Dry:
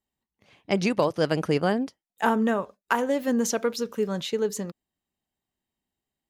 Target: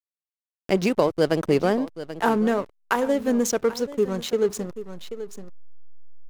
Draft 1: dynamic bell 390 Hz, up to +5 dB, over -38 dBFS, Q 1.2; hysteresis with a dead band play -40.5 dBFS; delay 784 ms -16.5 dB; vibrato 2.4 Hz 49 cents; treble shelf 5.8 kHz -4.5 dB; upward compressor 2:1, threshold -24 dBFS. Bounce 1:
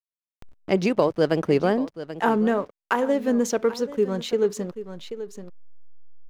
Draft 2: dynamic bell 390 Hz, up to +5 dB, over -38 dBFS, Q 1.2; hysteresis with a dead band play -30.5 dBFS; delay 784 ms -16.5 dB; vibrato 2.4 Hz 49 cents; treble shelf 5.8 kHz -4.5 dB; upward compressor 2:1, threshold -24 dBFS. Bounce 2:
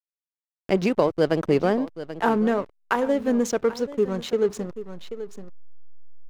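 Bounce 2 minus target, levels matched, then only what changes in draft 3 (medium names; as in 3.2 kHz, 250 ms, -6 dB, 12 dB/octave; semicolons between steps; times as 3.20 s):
8 kHz band -6.0 dB
change: treble shelf 5.8 kHz +6 dB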